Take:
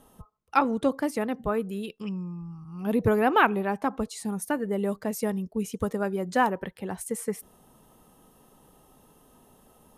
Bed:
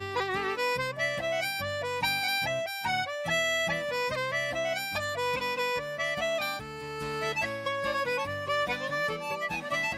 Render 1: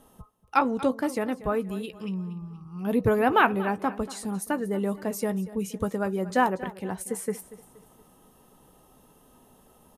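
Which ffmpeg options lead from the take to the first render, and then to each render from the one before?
-filter_complex "[0:a]asplit=2[a][b];[b]adelay=16,volume=-13dB[c];[a][c]amix=inputs=2:normalize=0,aecho=1:1:236|472|708|944:0.141|0.0593|0.0249|0.0105"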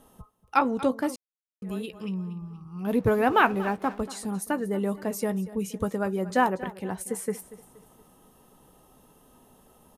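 -filter_complex "[0:a]asettb=1/sr,asplit=3[a][b][c];[a]atrim=end=2.854[d];[b]atrim=start=2.85:end=4.01,asetpts=PTS-STARTPTS,afade=t=in:d=0.004:c=qsin,afade=t=out:st=1.156:d=0.004:c=qsin,aeval=exprs='sgn(val(0))*max(abs(val(0))-0.00376,0)':c=same[e];[c]atrim=start=4.006[f];[d][e]acrossfade=d=0.004:c1=hsin:c2=qsin[g];[g][f]acrossfade=d=0.004:c1=qsin:c2=hsin,asplit=3[h][i][j];[h]atrim=end=1.16,asetpts=PTS-STARTPTS,afade=t=out:st=1.156:d=0.004:c=hsin[k];[i]atrim=start=1.16:end=1.62,asetpts=PTS-STARTPTS,volume=0[l];[j]atrim=start=1.62,asetpts=PTS-STARTPTS,afade=t=in:d=0.004:c=hsin[m];[k][l][m]concat=n=3:v=0:a=1"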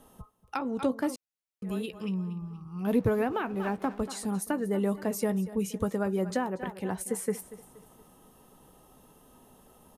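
-filter_complex "[0:a]alimiter=limit=-15dB:level=0:latency=1:release=365,acrossover=split=480[a][b];[b]acompressor=threshold=-31dB:ratio=6[c];[a][c]amix=inputs=2:normalize=0"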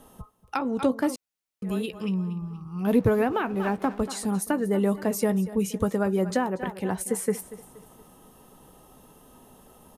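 -af "volume=4.5dB"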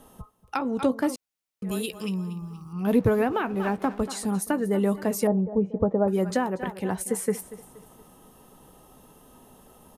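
-filter_complex "[0:a]asettb=1/sr,asplit=3[a][b][c];[a]atrim=end=1.714[d];[b]atrim=start=1.71:end=2.73,asetpts=PTS-STARTPTS,afade=t=in:d=0.004:c=qsin,afade=t=out:st=1.016:d=0.004:c=qsin,bass=f=250:g=-3,treble=f=4k:g=12[e];[c]atrim=start=2.726[f];[d][e]acrossfade=d=0.004:c1=hsin:c2=qsin[g];[g][f]acrossfade=d=0.004:c1=qsin:c2=hsin,asettb=1/sr,asplit=3[h][i][j];[h]atrim=end=5.274[k];[i]atrim=start=5.27:end=6.08,asetpts=PTS-STARTPTS,afade=t=in:d=0.004:c=qsin,afade=t=out:st=0.806:d=0.004:c=qsin,lowpass=f=720:t=q:w=1.9[l];[j]atrim=start=6.076[m];[k][l]acrossfade=d=0.004:c1=hsin:c2=qsin[n];[n][m]acrossfade=d=0.004:c1=qsin:c2=hsin"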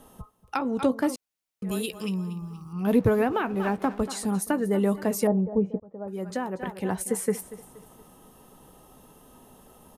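-filter_complex "[0:a]asplit=2[a][b];[a]atrim=end=5.8,asetpts=PTS-STARTPTS,afade=t=out:st=5.796:d=0.004:c=hsin[c];[b]atrim=start=5.8,asetpts=PTS-STARTPTS,afade=t=in:d=1.08[d];[c][d]concat=n=2:v=0:a=1"

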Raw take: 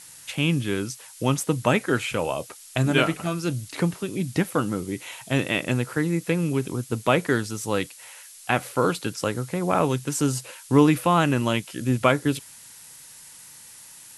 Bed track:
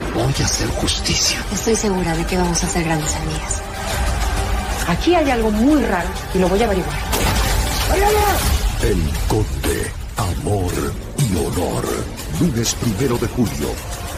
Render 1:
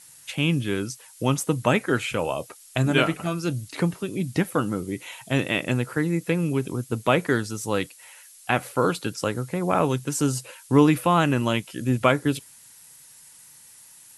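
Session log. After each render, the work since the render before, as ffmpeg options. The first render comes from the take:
-af "afftdn=nr=6:nf=-46"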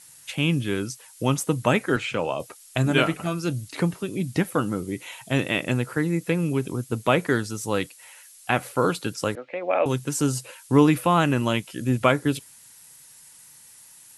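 -filter_complex "[0:a]asettb=1/sr,asplit=3[a][b][c];[a]atrim=end=1.964[d];[b]atrim=start=1.96:end=2.4,asetpts=PTS-STARTPTS,afade=t=in:d=0.004:c=qsin,afade=t=out:st=0.436:d=0.004:c=qsin,highpass=110,lowpass=6.2k[e];[c]atrim=start=2.396[f];[d][e]acrossfade=d=0.004:c1=hsin:c2=qsin[g];[g][f]acrossfade=d=0.004:c1=qsin:c2=hsin,asettb=1/sr,asplit=3[h][i][j];[h]atrim=end=9.354[k];[i]atrim=start=9.35:end=9.86,asetpts=PTS-STARTPTS,afade=t=in:d=0.004:c=qsin,afade=t=out:st=0.506:d=0.004:c=qsin,highpass=f=340:w=0.5412,highpass=f=340:w=1.3066,equalizer=f=400:t=q:w=4:g=-10,equalizer=f=570:t=q:w=4:g=7,equalizer=f=990:t=q:w=4:g=-8,equalizer=f=1.4k:t=q:w=4:g=-6,equalizer=f=2.4k:t=q:w=4:g=6,lowpass=f=3.1k:w=0.5412,lowpass=f=3.1k:w=1.3066[l];[j]atrim=start=9.856[m];[k][l]acrossfade=d=0.004:c1=hsin:c2=qsin[n];[n][m]acrossfade=d=0.004:c1=qsin:c2=hsin"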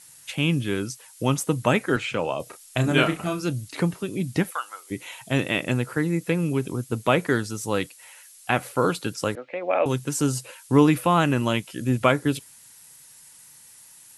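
-filter_complex "[0:a]asettb=1/sr,asplit=3[a][b][c];[a]atrim=end=2.434[d];[b]atrim=start=2.43:end=3.45,asetpts=PTS-STARTPTS,afade=t=in:d=0.004:c=qsin,afade=t=out:st=1.016:d=0.004:c=qsin,asplit=2[e][f];[f]adelay=33,volume=-7.5dB[g];[e][g]amix=inputs=2:normalize=0,atrim=end_sample=44982[h];[c]atrim=start=3.446[i];[d][h]acrossfade=d=0.004:c1=hsin:c2=qsin[j];[j][i]acrossfade=d=0.004:c1=qsin:c2=hsin,asplit=3[k][l][m];[k]afade=t=out:st=4.5:d=0.02[n];[l]highpass=f=850:w=0.5412,highpass=f=850:w=1.3066,afade=t=in:st=4.5:d=0.02,afade=t=out:st=4.9:d=0.02[o];[m]afade=t=in:st=4.9:d=0.02[p];[n][o][p]amix=inputs=3:normalize=0"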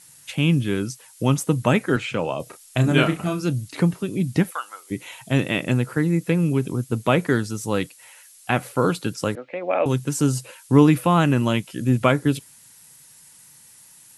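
-af "equalizer=f=160:w=0.69:g=5"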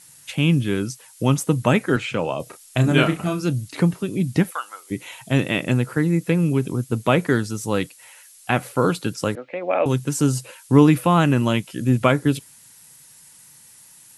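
-af "volume=1dB,alimiter=limit=-2dB:level=0:latency=1"

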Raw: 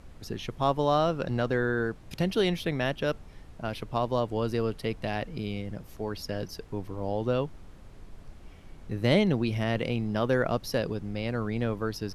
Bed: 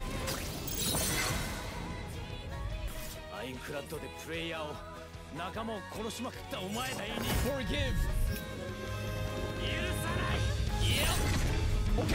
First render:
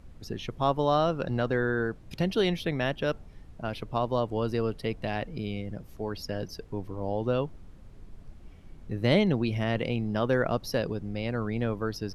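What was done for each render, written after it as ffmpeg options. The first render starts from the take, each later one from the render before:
-af "afftdn=nr=6:nf=-49"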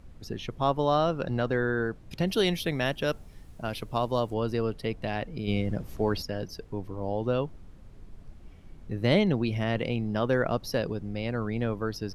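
-filter_complex "[0:a]asettb=1/sr,asplit=3[a][b][c];[a]atrim=end=2.274[d];[b]atrim=start=2.27:end=4.34,asetpts=PTS-STARTPTS,afade=t=in:d=0.004:c=qsin,afade=t=out:st=2.066:d=0.004:c=qsin,aemphasis=mode=production:type=50kf[e];[c]atrim=start=4.336[f];[d][e]acrossfade=d=0.004:c1=hsin:c2=qsin[g];[g][f]acrossfade=d=0.004:c1=qsin:c2=hsin,asplit=3[h][i][j];[h]afade=t=out:st=5.47:d=0.02[k];[i]acontrast=84,afade=t=in:st=5.47:d=0.02,afade=t=out:st=6.21:d=0.02[l];[j]afade=t=in:st=6.21:d=0.02[m];[k][l][m]amix=inputs=3:normalize=0"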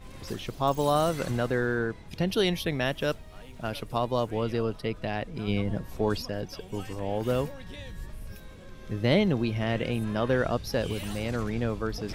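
-filter_complex "[1:a]volume=-9.5dB[a];[0:a][a]amix=inputs=2:normalize=0"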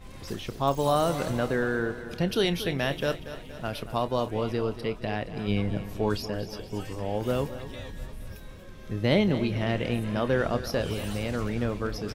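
-filter_complex "[0:a]asplit=2[a][b];[b]adelay=29,volume=-14dB[c];[a][c]amix=inputs=2:normalize=0,aecho=1:1:234|468|702|936|1170|1404:0.224|0.125|0.0702|0.0393|0.022|0.0123"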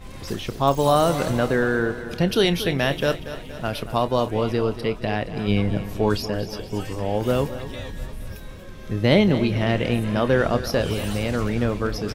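-af "volume=6dB"

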